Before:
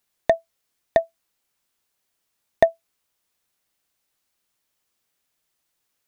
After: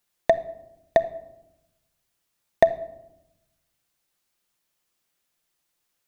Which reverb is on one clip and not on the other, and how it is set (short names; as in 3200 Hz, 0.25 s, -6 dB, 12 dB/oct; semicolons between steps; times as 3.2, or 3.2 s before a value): shoebox room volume 3300 m³, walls furnished, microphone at 0.85 m; gain -1 dB